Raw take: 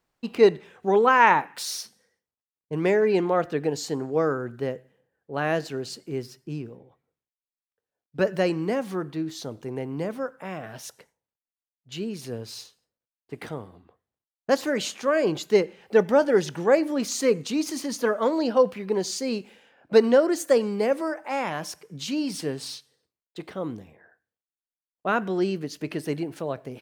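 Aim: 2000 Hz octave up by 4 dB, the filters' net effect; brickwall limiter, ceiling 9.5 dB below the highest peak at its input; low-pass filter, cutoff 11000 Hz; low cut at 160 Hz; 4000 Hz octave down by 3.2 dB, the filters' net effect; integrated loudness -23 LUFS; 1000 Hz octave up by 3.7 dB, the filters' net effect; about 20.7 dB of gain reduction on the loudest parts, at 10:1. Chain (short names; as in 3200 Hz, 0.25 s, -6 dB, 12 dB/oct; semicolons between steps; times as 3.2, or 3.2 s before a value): HPF 160 Hz; LPF 11000 Hz; bell 1000 Hz +3.5 dB; bell 2000 Hz +5 dB; bell 4000 Hz -6 dB; compressor 10:1, threshold -32 dBFS; gain +16.5 dB; limiter -12 dBFS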